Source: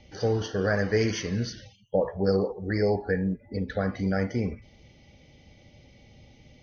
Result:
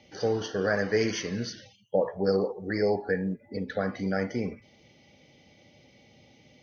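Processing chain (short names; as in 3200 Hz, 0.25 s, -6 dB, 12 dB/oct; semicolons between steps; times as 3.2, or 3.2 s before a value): Bessel high-pass 190 Hz, order 2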